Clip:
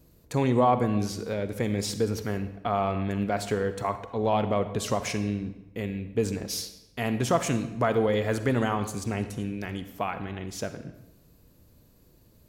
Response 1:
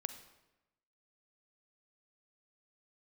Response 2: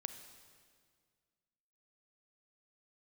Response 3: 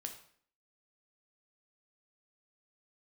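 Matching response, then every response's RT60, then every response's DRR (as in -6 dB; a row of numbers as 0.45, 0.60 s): 1; 1.0, 1.9, 0.55 s; 10.0, 8.5, 4.0 dB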